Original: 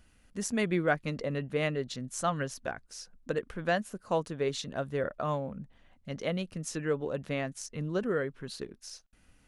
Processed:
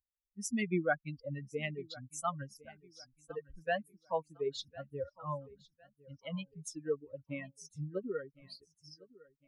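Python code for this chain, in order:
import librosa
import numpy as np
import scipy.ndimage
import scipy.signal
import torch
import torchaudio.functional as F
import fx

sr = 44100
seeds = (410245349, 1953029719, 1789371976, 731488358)

p1 = fx.bin_expand(x, sr, power=3.0)
y = p1 + fx.echo_feedback(p1, sr, ms=1056, feedback_pct=35, wet_db=-21.5, dry=0)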